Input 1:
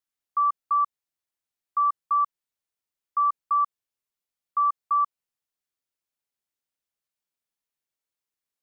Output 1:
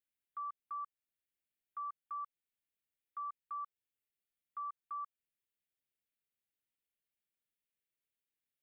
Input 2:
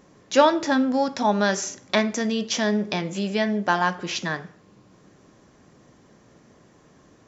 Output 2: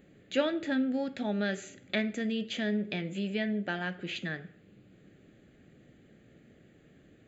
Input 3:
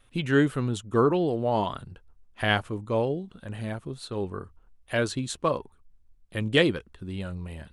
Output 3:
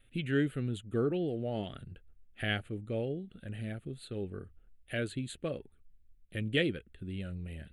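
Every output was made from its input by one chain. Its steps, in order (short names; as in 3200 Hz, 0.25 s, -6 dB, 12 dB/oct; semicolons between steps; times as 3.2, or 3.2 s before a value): in parallel at -2.5 dB: compressor, threshold -36 dBFS; on the sum: fixed phaser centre 2400 Hz, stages 4; gain -7.5 dB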